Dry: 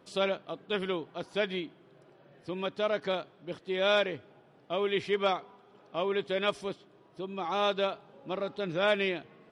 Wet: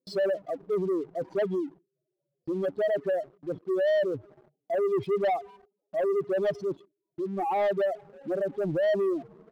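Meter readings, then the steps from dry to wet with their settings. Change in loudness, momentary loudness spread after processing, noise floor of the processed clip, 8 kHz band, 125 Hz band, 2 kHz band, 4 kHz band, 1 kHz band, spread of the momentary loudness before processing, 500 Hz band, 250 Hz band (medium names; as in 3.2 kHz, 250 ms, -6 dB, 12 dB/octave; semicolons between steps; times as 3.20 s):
+2.5 dB, 11 LU, -85 dBFS, no reading, +3.0 dB, -5.5 dB, -12.5 dB, +1.0 dB, 13 LU, +4.5 dB, +4.0 dB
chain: spectral contrast enhancement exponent 3.3; gate with hold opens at -50 dBFS; high-order bell 1.9 kHz -16 dB 1.2 oct; waveshaping leveller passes 2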